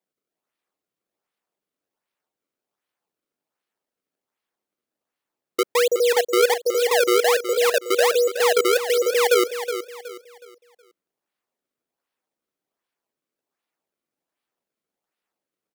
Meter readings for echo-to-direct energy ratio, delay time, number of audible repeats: −9.5 dB, 369 ms, 3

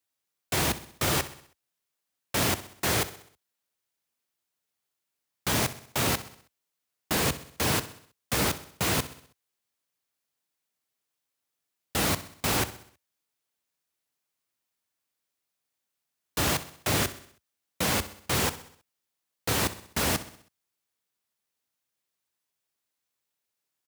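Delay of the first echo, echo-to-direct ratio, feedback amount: 64 ms, −13.5 dB, 51%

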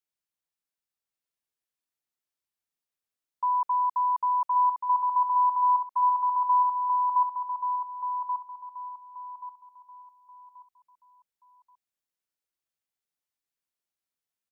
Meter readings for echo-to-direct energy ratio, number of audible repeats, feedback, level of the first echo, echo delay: −5.0 dB, 3, 32%, −5.5 dB, 1,131 ms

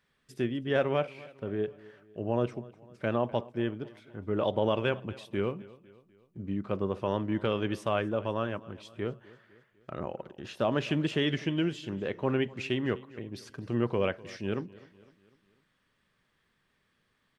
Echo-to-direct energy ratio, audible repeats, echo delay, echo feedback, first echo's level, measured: −19.5 dB, 3, 251 ms, 51%, −21.0 dB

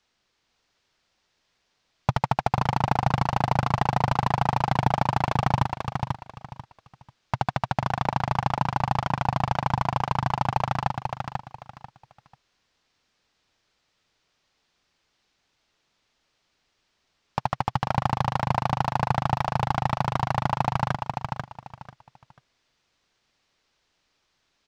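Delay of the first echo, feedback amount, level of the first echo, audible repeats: 491 ms, 25%, −5.0 dB, 3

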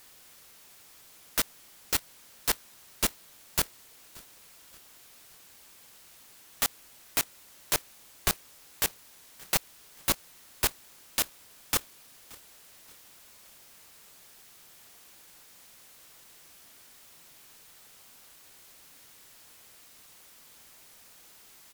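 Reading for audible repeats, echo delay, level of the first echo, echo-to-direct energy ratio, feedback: 2, 576 ms, −23.0 dB, −22.0 dB, 43%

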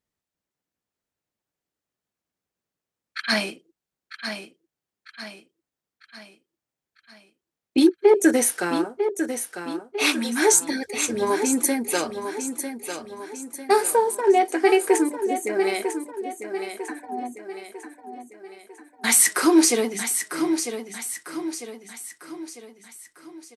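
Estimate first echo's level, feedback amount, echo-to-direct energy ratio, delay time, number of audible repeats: −8.5 dB, 47%, −7.5 dB, 949 ms, 5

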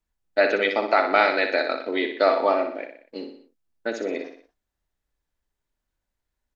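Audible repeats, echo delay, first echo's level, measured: 4, 61 ms, −7.5 dB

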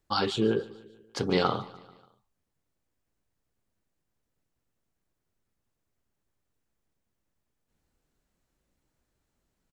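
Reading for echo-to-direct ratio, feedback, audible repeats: −18.5 dB, 55%, 3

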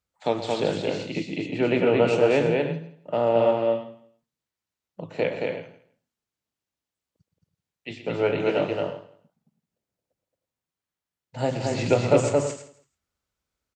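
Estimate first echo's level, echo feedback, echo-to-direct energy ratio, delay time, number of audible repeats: −12.0 dB, repeats not evenly spaced, −1.5 dB, 121 ms, 7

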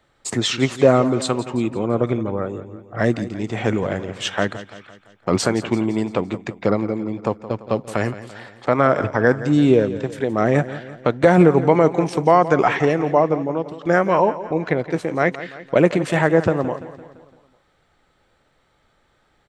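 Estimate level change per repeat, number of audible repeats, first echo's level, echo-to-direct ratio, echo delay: −5.5 dB, 4, −14.5 dB, −13.0 dB, 170 ms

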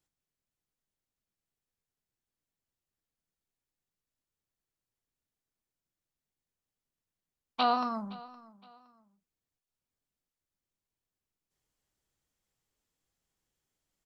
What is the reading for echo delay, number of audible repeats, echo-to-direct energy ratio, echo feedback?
516 ms, 2, −20.0 dB, 31%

